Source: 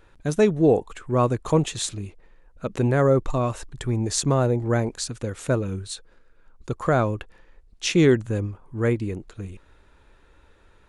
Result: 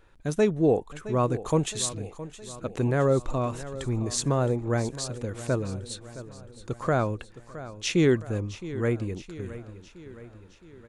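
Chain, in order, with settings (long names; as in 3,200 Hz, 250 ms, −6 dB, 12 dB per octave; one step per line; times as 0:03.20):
0:01.47–0:01.93: high-shelf EQ 6,400 Hz +7.5 dB
on a send: repeating echo 666 ms, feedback 55%, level −15 dB
on the sum: level −4 dB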